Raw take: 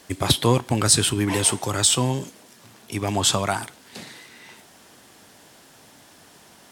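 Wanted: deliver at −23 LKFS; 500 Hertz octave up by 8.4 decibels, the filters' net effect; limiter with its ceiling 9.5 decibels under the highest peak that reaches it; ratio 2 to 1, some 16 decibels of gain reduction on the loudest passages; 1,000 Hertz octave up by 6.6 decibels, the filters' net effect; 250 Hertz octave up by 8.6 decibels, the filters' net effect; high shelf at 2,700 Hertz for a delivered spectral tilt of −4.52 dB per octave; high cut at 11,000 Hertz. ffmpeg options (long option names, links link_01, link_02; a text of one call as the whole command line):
ffmpeg -i in.wav -af "lowpass=11000,equalizer=frequency=250:width_type=o:gain=8.5,equalizer=frequency=500:width_type=o:gain=6.5,equalizer=frequency=1000:width_type=o:gain=6.5,highshelf=frequency=2700:gain=-6.5,acompressor=threshold=-37dB:ratio=2,volume=11.5dB,alimiter=limit=-10.5dB:level=0:latency=1" out.wav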